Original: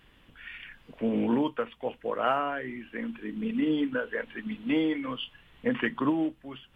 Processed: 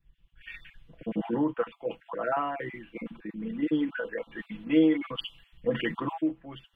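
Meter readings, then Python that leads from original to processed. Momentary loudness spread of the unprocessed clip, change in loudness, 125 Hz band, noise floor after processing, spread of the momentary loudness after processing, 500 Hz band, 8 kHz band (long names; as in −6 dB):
15 LU, 0.0 dB, +1.0 dB, −66 dBFS, 18 LU, 0.0 dB, can't be measured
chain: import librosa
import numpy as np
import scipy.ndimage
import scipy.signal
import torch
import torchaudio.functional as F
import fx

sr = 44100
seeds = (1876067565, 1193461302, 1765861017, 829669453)

p1 = fx.spec_dropout(x, sr, seeds[0], share_pct=23)
p2 = fx.high_shelf(p1, sr, hz=2800.0, db=-8.5)
p3 = p2 + 0.68 * np.pad(p2, (int(6.0 * sr / 1000.0), 0))[:len(p2)]
p4 = fx.over_compress(p3, sr, threshold_db=-37.0, ratio=-1.0)
p5 = p3 + (p4 * 10.0 ** (-3.0 / 20.0))
p6 = fx.band_widen(p5, sr, depth_pct=100)
y = p6 * 10.0 ** (-3.0 / 20.0)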